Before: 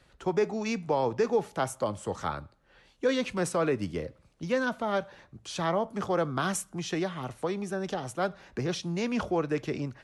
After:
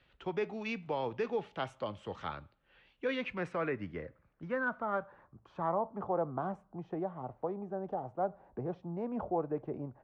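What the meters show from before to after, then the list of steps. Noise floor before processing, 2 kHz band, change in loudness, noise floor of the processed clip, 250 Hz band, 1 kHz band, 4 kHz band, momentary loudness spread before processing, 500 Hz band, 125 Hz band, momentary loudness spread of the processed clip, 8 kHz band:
−63 dBFS, −5.0 dB, −6.5 dB, −71 dBFS, −8.0 dB, −4.5 dB, −11.5 dB, 7 LU, −7.0 dB, −8.5 dB, 8 LU, below −25 dB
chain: low-pass filter sweep 3,000 Hz → 790 Hz, 0:02.63–0:06.32
level −8.5 dB

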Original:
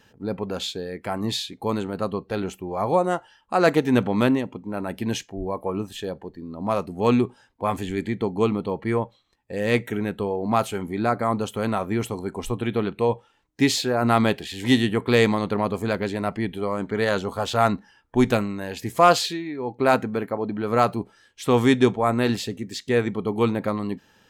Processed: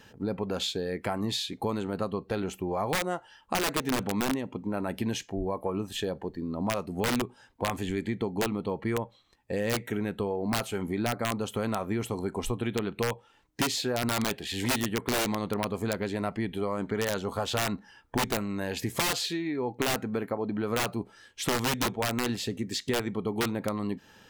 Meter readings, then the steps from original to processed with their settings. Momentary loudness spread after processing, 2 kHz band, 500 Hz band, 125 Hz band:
5 LU, −5.0 dB, −8.0 dB, −6.5 dB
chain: wrap-around overflow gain 12.5 dB
downward compressor 4 to 1, threshold −31 dBFS, peak gain reduction 13 dB
level +3 dB

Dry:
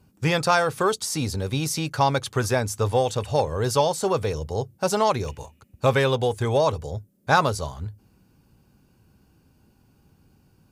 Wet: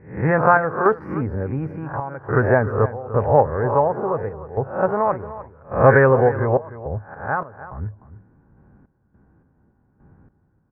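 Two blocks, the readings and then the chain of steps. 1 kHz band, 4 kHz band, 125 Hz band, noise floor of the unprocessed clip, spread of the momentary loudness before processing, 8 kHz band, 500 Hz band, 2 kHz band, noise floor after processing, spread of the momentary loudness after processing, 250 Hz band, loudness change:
+3.5 dB, below −35 dB, +3.5 dB, −62 dBFS, 11 LU, below −40 dB, +5.0 dB, +4.5 dB, −63 dBFS, 15 LU, +3.5 dB, +4.0 dB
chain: peak hold with a rise ahead of every peak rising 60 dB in 0.45 s
elliptic low-pass filter 1,800 Hz, stop band 50 dB
sample-and-hold tremolo, depth 95%
single-tap delay 301 ms −15 dB
level +7.5 dB

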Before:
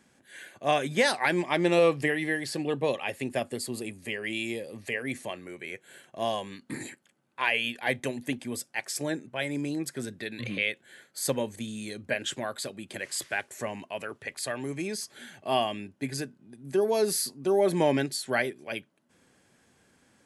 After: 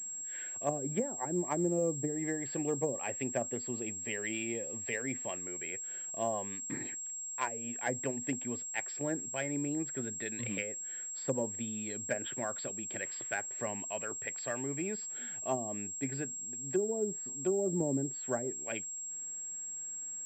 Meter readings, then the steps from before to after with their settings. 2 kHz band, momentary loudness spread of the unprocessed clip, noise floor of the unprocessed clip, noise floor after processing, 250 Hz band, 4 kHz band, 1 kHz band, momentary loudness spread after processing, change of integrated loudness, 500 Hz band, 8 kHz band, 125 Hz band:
−10.5 dB, 15 LU, −66 dBFS, −42 dBFS, −4.5 dB, −16.5 dB, −8.5 dB, 6 LU, −5.5 dB, −7.5 dB, +5.0 dB, −4.0 dB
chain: treble cut that deepens with the level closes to 360 Hz, closed at −21.5 dBFS
switching amplifier with a slow clock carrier 7,600 Hz
level −4 dB

